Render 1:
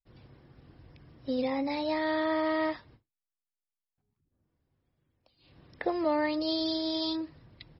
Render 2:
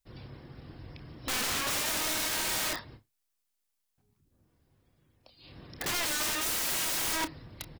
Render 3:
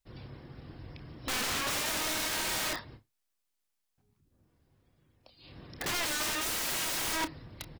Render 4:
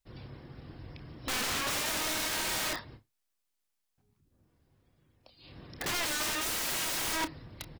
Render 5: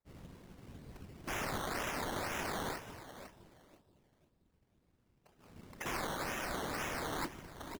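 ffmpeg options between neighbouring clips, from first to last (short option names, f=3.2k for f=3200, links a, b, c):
-filter_complex "[0:a]highshelf=f=4.3k:g=5.5,aeval=exprs='(mod(50.1*val(0)+1,2)-1)/50.1':c=same,asplit=2[a][b];[b]adelay=29,volume=-12dB[c];[a][c]amix=inputs=2:normalize=0,volume=7.5dB"
-af "highshelf=f=6.6k:g=-4"
-af anull
-filter_complex "[0:a]asplit=2[a][b];[b]adelay=504,lowpass=f=800:p=1,volume=-5dB,asplit=2[c][d];[d]adelay=504,lowpass=f=800:p=1,volume=0.36,asplit=2[e][f];[f]adelay=504,lowpass=f=800:p=1,volume=0.36,asplit=2[g][h];[h]adelay=504,lowpass=f=800:p=1,volume=0.36[i];[a][c][e][g][i]amix=inputs=5:normalize=0,afftfilt=real='hypot(re,im)*cos(2*PI*random(0))':imag='hypot(re,im)*sin(2*PI*random(1))':win_size=512:overlap=0.75,acrusher=samples=14:mix=1:aa=0.000001:lfo=1:lforange=8.4:lforate=2"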